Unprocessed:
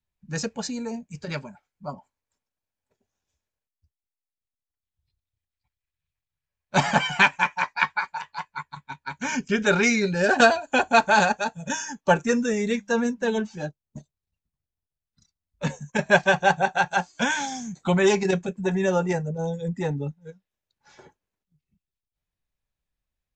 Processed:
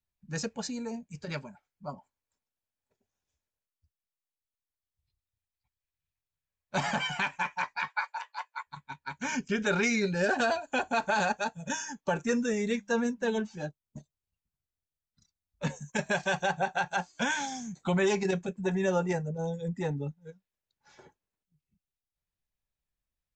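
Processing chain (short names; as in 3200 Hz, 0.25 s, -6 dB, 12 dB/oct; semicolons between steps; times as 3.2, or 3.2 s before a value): 7.88–8.67 steep high-pass 460 Hz 72 dB/oct; 15.75–16.46 high shelf 5700 Hz -> 4200 Hz +10 dB; limiter -13 dBFS, peak gain reduction 10 dB; gain -5 dB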